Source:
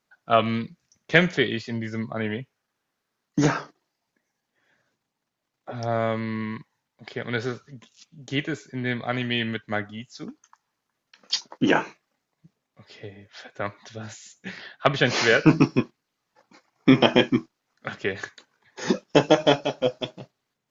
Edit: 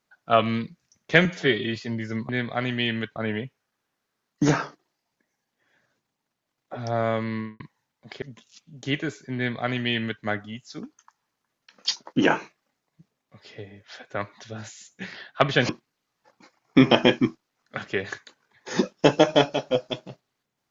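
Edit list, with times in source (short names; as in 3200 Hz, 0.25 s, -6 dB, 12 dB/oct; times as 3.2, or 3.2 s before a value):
1.25–1.59 stretch 1.5×
6.31–6.56 studio fade out
7.18–7.67 cut
8.81–9.68 copy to 2.12
15.14–15.8 cut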